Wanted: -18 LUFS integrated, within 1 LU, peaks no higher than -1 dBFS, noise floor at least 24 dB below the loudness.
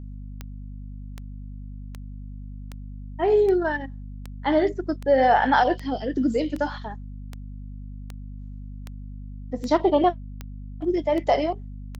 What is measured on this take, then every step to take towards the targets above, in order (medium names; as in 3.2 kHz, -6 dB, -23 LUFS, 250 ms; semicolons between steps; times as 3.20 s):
clicks found 16; hum 50 Hz; highest harmonic 250 Hz; hum level -34 dBFS; loudness -23.0 LUFS; peak level -7.5 dBFS; loudness target -18.0 LUFS
-> de-click; de-hum 50 Hz, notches 5; trim +5 dB